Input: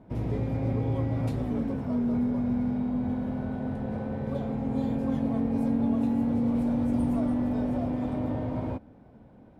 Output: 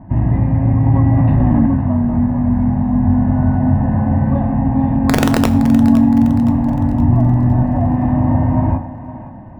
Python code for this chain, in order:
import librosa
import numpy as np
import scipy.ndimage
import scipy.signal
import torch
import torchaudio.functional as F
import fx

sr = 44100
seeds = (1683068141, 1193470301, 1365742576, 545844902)

p1 = fx.octave_divider(x, sr, octaves=1, level_db=0.0, at=(7.07, 7.63))
p2 = scipy.signal.sosfilt(scipy.signal.butter(4, 2100.0, 'lowpass', fs=sr, output='sos'), p1)
p3 = fx.low_shelf(p2, sr, hz=220.0, db=3.0)
p4 = p3 + 0.96 * np.pad(p3, (int(1.1 * sr / 1000.0), 0))[:len(p3)]
p5 = fx.rider(p4, sr, range_db=10, speed_s=0.5)
p6 = p4 + (p5 * 10.0 ** (2.0 / 20.0))
p7 = fx.overflow_wrap(p6, sr, gain_db=8.0, at=(5.01, 5.61))
p8 = fx.echo_thinned(p7, sr, ms=516, feedback_pct=45, hz=220.0, wet_db=-13)
p9 = fx.rev_fdn(p8, sr, rt60_s=0.74, lf_ratio=0.85, hf_ratio=0.8, size_ms=64.0, drr_db=7.5)
p10 = fx.env_flatten(p9, sr, amount_pct=70, at=(0.86, 1.66))
y = p10 * 10.0 ** (2.0 / 20.0)